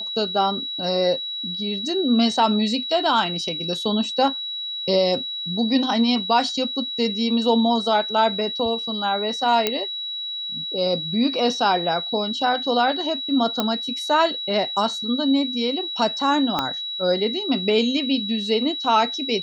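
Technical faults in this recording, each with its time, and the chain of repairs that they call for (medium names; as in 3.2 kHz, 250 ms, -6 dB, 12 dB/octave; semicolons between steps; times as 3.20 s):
whine 3.9 kHz -27 dBFS
9.67 s: pop -5 dBFS
13.60 s: pop -7 dBFS
16.59 s: pop -8 dBFS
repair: de-click; band-stop 3.9 kHz, Q 30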